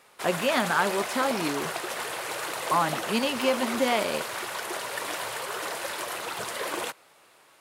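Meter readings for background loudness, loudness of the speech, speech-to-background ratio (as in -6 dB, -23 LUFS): -32.0 LUFS, -27.5 LUFS, 4.5 dB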